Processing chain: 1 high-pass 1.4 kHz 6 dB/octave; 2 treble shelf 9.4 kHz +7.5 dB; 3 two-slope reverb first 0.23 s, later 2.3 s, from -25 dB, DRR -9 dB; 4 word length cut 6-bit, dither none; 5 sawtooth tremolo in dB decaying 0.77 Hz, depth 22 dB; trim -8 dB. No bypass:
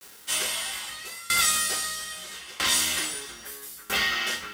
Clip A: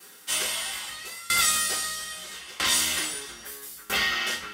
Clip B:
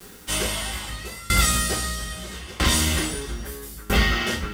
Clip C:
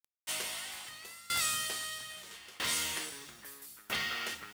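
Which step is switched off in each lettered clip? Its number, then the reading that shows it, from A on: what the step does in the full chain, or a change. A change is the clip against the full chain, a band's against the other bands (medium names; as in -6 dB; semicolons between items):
4, distortion -27 dB; 1, 125 Hz band +20.0 dB; 3, 125 Hz band +3.0 dB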